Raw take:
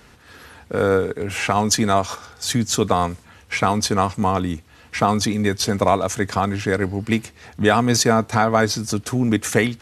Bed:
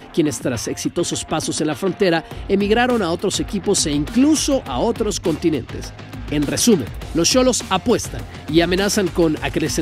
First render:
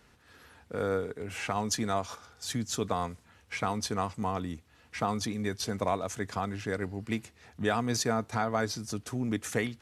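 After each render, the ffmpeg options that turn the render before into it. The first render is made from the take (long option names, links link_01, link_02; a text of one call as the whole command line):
ffmpeg -i in.wav -af "volume=-12.5dB" out.wav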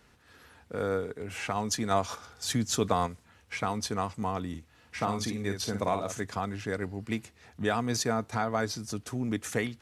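ffmpeg -i in.wav -filter_complex "[0:a]asettb=1/sr,asplit=3[link_01][link_02][link_03];[link_01]atrim=end=4.484[link_04];[link_02]atrim=start=4.48:end=6.24,asetpts=PTS-STARTPTS,afade=type=in:duration=0.004:curve=qsin,afade=type=out:start_time=1.756:duration=0.004:curve=qsin,asplit=2[link_05][link_06];[link_06]adelay=50,volume=-7dB[link_07];[link_05][link_07]amix=inputs=2:normalize=0,atrim=end_sample=77616[link_08];[link_03]atrim=start=6.236[link_09];[link_04][link_08]acrossfade=duration=0.004:curve1=hsin:curve2=qsin[link_10];[link_10][link_09]acrossfade=duration=0.004:curve1=qsin:curve2=hsin,asplit=3[link_11][link_12][link_13];[link_11]atrim=end=1.912[link_14];[link_12]atrim=start=1.908:end=3.072,asetpts=PTS-STARTPTS,volume=4dB[link_15];[link_13]atrim=start=3.068[link_16];[link_14][link_15]acrossfade=duration=0.004:curve1=hsin:curve2=hsin[link_17];[link_17][link_16]acrossfade=duration=0.004:curve1=hsin:curve2=hsin" out.wav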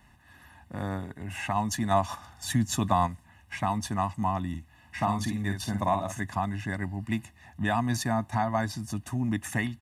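ffmpeg -i in.wav -af "equalizer=frequency=5000:width_type=o:width=1.1:gain=-8,aecho=1:1:1.1:0.99" out.wav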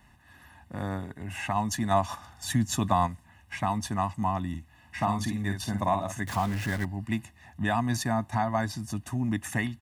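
ffmpeg -i in.wav -filter_complex "[0:a]asettb=1/sr,asplit=3[link_01][link_02][link_03];[link_01]atrim=end=6.274[link_04];[link_02]atrim=start=6.27:end=6.85,asetpts=PTS-STARTPTS,afade=type=in:duration=0.004:curve=qsin,afade=type=out:start_time=0.576:duration=0.004:curve=qsin,aeval=exprs='val(0)+0.5*0.0224*sgn(val(0))':channel_layout=same[link_05];[link_03]atrim=start=6.846[link_06];[link_04][link_05]acrossfade=duration=0.004:curve1=hsin:curve2=qsin[link_07];[link_07][link_06]acrossfade=duration=0.004:curve1=qsin:curve2=hsin" out.wav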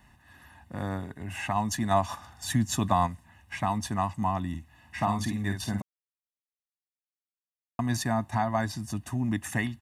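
ffmpeg -i in.wav -filter_complex "[0:a]asplit=3[link_01][link_02][link_03];[link_01]atrim=end=5.82,asetpts=PTS-STARTPTS,afade=type=out:start_time=5.816:duration=0.004:curve=hsin[link_04];[link_02]atrim=start=5.82:end=7.79,asetpts=PTS-STARTPTS,volume=0[link_05];[link_03]atrim=start=7.79,asetpts=PTS-STARTPTS,afade=type=in:duration=0.004:curve=hsin[link_06];[link_04][link_05][link_06]concat=n=3:v=0:a=1" out.wav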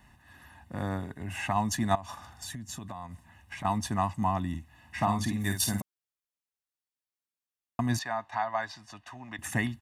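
ffmpeg -i in.wav -filter_complex "[0:a]asettb=1/sr,asplit=3[link_01][link_02][link_03];[link_01]atrim=end=1.954[link_04];[link_02]atrim=start=1.95:end=3.65,asetpts=PTS-STARTPTS,afade=type=in:duration=0.004:curve=qsin,afade=type=out:start_time=1.696:duration=0.004:curve=qsin,acompressor=threshold=-36dB:ratio=12:attack=3.2:release=140:knee=1:detection=peak[link_05];[link_03]atrim=start=3.646[link_06];[link_04][link_05]acrossfade=duration=0.004:curve1=hsin:curve2=qsin[link_07];[link_07][link_06]acrossfade=duration=0.004:curve1=qsin:curve2=hsin,asplit=3[link_08][link_09][link_10];[link_08]afade=type=out:start_time=5.4:duration=0.02[link_11];[link_09]aemphasis=mode=production:type=75fm,afade=type=in:start_time=5.4:duration=0.02,afade=type=out:start_time=5.8:duration=0.02[link_12];[link_10]afade=type=in:start_time=5.8:duration=0.02[link_13];[link_11][link_12][link_13]amix=inputs=3:normalize=0,asettb=1/sr,asplit=3[link_14][link_15][link_16];[link_14]atrim=end=7.994[link_17];[link_15]atrim=start=7.99:end=9.39,asetpts=PTS-STARTPTS,afade=type=in:duration=0.004:curve=qsin,afade=type=out:start_time=1.396:duration=0.004:curve=qsin,acrossover=split=580 5200:gain=0.1 1 0.0794[link_18][link_19][link_20];[link_18][link_19][link_20]amix=inputs=3:normalize=0[link_21];[link_16]atrim=start=9.386[link_22];[link_17][link_21]acrossfade=duration=0.004:curve1=hsin:curve2=qsin[link_23];[link_23][link_22]acrossfade=duration=0.004:curve1=qsin:curve2=hsin" out.wav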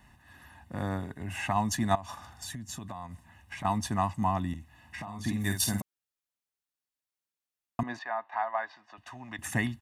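ffmpeg -i in.wav -filter_complex "[0:a]asettb=1/sr,asplit=3[link_01][link_02][link_03];[link_01]atrim=end=4.534[link_04];[link_02]atrim=start=4.53:end=5.25,asetpts=PTS-STARTPTS,afade=type=in:duration=0.004:curve=qsin,afade=type=out:start_time=0.716:duration=0.004:curve=qsin,acompressor=threshold=-36dB:ratio=10:attack=3.2:release=140:knee=1:detection=peak[link_05];[link_03]atrim=start=5.246[link_06];[link_04][link_05]acrossfade=duration=0.004:curve1=hsin:curve2=qsin[link_07];[link_07][link_06]acrossfade=duration=0.004:curve1=qsin:curve2=hsin,asettb=1/sr,asplit=3[link_08][link_09][link_10];[link_08]atrim=end=7.834[link_11];[link_09]atrim=start=7.83:end=8.98,asetpts=PTS-STARTPTS,afade=type=in:duration=0.004:curve=qsin,afade=type=out:start_time=1.146:duration=0.004:curve=qsin,highpass=420,lowpass=2300[link_12];[link_10]atrim=start=8.976[link_13];[link_11][link_12]acrossfade=duration=0.004:curve1=hsin:curve2=qsin[link_14];[link_14][link_13]acrossfade=duration=0.004:curve1=qsin:curve2=hsin" out.wav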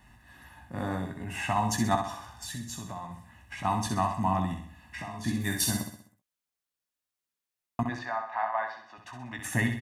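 ffmpeg -i in.wav -filter_complex "[0:a]asplit=2[link_01][link_02];[link_02]adelay=17,volume=-7.5dB[link_03];[link_01][link_03]amix=inputs=2:normalize=0,asplit=2[link_04][link_05];[link_05]aecho=0:1:64|128|192|256|320|384:0.447|0.21|0.0987|0.0464|0.0218|0.0102[link_06];[link_04][link_06]amix=inputs=2:normalize=0" out.wav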